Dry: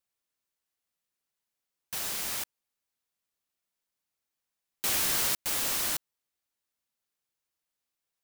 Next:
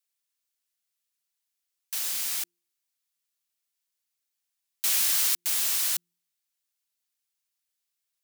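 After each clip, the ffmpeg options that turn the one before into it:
-filter_complex "[0:a]tiltshelf=f=1500:g=-7.5,bandreject=f=173.7:t=h:w=4,bandreject=f=347.4:t=h:w=4,acrossover=split=340|950[s0][s1][s2];[s0]alimiter=level_in=22.4:limit=0.0631:level=0:latency=1:release=128,volume=0.0447[s3];[s3][s1][s2]amix=inputs=3:normalize=0,volume=0.708"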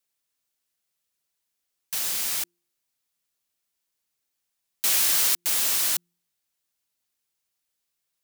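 -af "tiltshelf=f=970:g=3.5,volume=2"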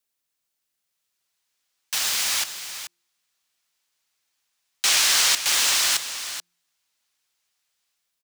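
-filter_complex "[0:a]acrossover=split=230|720|7700[s0][s1][s2][s3];[s2]dynaudnorm=f=790:g=3:m=2.82[s4];[s3]alimiter=limit=0.0794:level=0:latency=1[s5];[s0][s1][s4][s5]amix=inputs=4:normalize=0,aecho=1:1:432:0.282"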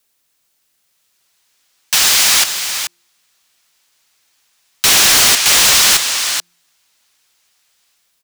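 -af "aeval=exprs='0.473*sin(PI/2*3.55*val(0)/0.473)':c=same"

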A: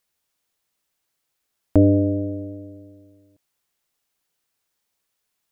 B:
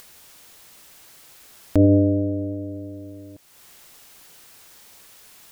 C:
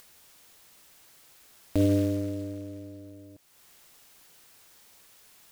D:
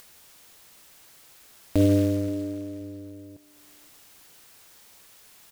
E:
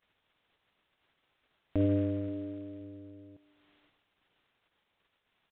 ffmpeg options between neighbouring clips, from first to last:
-filter_complex "[0:a]asplit=2[s0][s1];[s1]acompressor=mode=upward:threshold=0.126:ratio=2.5,volume=0.794[s2];[s0][s2]amix=inputs=2:normalize=0,alimiter=level_in=1.33:limit=0.891:release=50:level=0:latency=1,volume=0.531"
-af "acrusher=bits=5:mode=log:mix=0:aa=0.000001,volume=0.398"
-filter_complex "[0:a]asplit=2[s0][s1];[s1]adelay=527,lowpass=f=2000:p=1,volume=0.0841,asplit=2[s2][s3];[s3]adelay=527,lowpass=f=2000:p=1,volume=0.28[s4];[s0][s2][s4]amix=inputs=3:normalize=0,volume=1.5"
-filter_complex "[0:a]aresample=8000,aresample=44100,acrossover=split=2800[s0][s1];[s1]acompressor=threshold=0.001:ratio=4:attack=1:release=60[s2];[s0][s2]amix=inputs=2:normalize=0,agate=range=0.0708:threshold=0.00112:ratio=16:detection=peak,volume=0.398"

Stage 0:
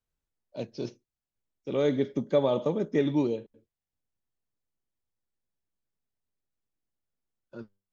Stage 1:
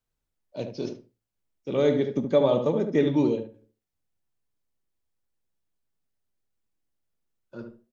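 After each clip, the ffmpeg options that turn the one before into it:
-filter_complex "[0:a]flanger=delay=6.4:depth=9.8:regen=-76:speed=0.33:shape=triangular,asplit=2[s0][s1];[s1]adelay=73,lowpass=f=1300:p=1,volume=0.501,asplit=2[s2][s3];[s3]adelay=73,lowpass=f=1300:p=1,volume=0.22,asplit=2[s4][s5];[s5]adelay=73,lowpass=f=1300:p=1,volume=0.22[s6];[s2][s4][s6]amix=inputs=3:normalize=0[s7];[s0][s7]amix=inputs=2:normalize=0,volume=2.24"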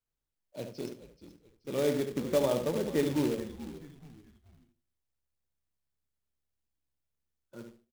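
-filter_complex "[0:a]asplit=4[s0][s1][s2][s3];[s1]adelay=430,afreqshift=-69,volume=0.2[s4];[s2]adelay=860,afreqshift=-138,volume=0.0716[s5];[s3]adelay=1290,afreqshift=-207,volume=0.026[s6];[s0][s4][s5][s6]amix=inputs=4:normalize=0,acrusher=bits=3:mode=log:mix=0:aa=0.000001,volume=0.447"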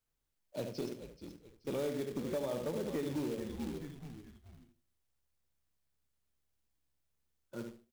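-af "acompressor=threshold=0.0141:ratio=5,asoftclip=type=hard:threshold=0.0211,volume=1.5"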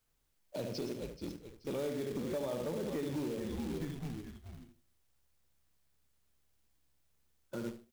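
-af "alimiter=level_in=5.01:limit=0.0631:level=0:latency=1:release=42,volume=0.2,volume=2.24"

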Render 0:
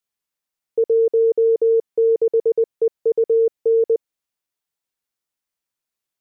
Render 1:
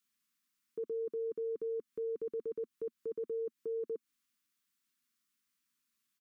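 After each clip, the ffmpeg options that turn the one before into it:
-af "firequalizer=gain_entry='entry(130,0);entry(230,14);entry(350,1);entry(670,-21);entry(1100,7)':delay=0.05:min_phase=1,alimiter=level_in=1.68:limit=0.0631:level=0:latency=1:release=149,volume=0.596,volume=0.596"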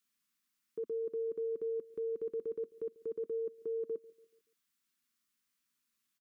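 -filter_complex "[0:a]asplit=2[s0][s1];[s1]adelay=143,lowpass=f=820:p=1,volume=0.0891,asplit=2[s2][s3];[s3]adelay=143,lowpass=f=820:p=1,volume=0.52,asplit=2[s4][s5];[s5]adelay=143,lowpass=f=820:p=1,volume=0.52,asplit=2[s6][s7];[s7]adelay=143,lowpass=f=820:p=1,volume=0.52[s8];[s0][s2][s4][s6][s8]amix=inputs=5:normalize=0"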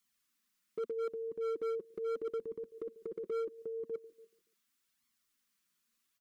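-af "flanger=delay=0.9:depth=4.8:regen=16:speed=0.79:shape=sinusoidal,asoftclip=type=hard:threshold=0.0112,volume=2"

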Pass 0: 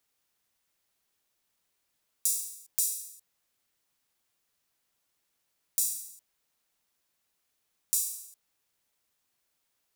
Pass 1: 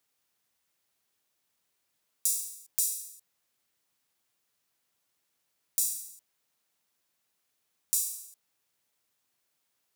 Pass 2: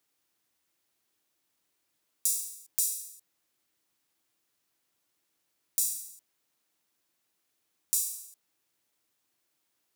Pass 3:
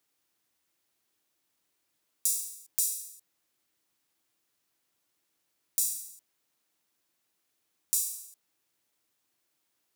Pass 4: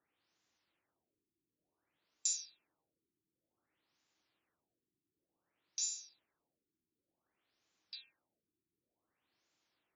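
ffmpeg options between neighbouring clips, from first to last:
-af "highpass=74"
-af "equalizer=f=320:w=4.3:g=8"
-af anull
-af "afftfilt=real='re*lt(b*sr/1024,400*pow(7500/400,0.5+0.5*sin(2*PI*0.55*pts/sr)))':imag='im*lt(b*sr/1024,400*pow(7500/400,0.5+0.5*sin(2*PI*0.55*pts/sr)))':win_size=1024:overlap=0.75"

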